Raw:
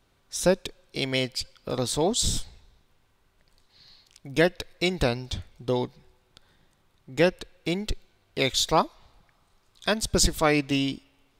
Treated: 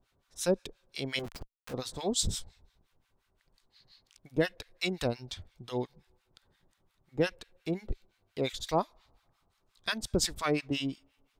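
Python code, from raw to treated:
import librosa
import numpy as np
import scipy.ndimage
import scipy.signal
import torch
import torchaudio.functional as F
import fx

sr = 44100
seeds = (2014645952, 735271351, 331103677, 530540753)

y = fx.schmitt(x, sr, flips_db=-38.0, at=(1.19, 1.74))
y = fx.harmonic_tremolo(y, sr, hz=5.7, depth_pct=100, crossover_hz=970.0)
y = F.gain(torch.from_numpy(y), -3.0).numpy()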